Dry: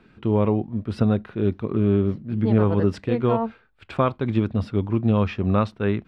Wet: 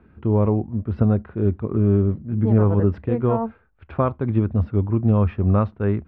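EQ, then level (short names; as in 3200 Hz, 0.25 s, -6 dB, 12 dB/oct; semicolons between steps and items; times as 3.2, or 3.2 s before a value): LPF 1500 Hz 12 dB/oct; bell 72 Hz +13.5 dB 0.71 oct; 0.0 dB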